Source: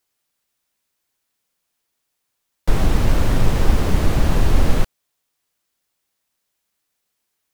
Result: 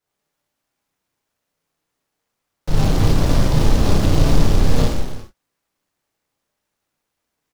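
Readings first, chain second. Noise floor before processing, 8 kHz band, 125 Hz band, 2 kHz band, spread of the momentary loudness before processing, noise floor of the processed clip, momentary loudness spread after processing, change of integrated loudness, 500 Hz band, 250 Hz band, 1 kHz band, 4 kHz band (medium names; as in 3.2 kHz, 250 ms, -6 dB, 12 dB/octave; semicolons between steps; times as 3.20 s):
-76 dBFS, +3.0 dB, +3.0 dB, -1.0 dB, 6 LU, -79 dBFS, 9 LU, +2.0 dB, +2.5 dB, +3.5 dB, +1.0 dB, +4.0 dB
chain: treble shelf 3.1 kHz -10.5 dB; peak limiter -10.5 dBFS, peak gain reduction 8.5 dB; on a send: early reflections 32 ms -5.5 dB, 47 ms -15.5 dB; on the sum: gated-style reverb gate 450 ms falling, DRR -7 dB; delay time shaken by noise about 3.7 kHz, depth 0.081 ms; trim -3.5 dB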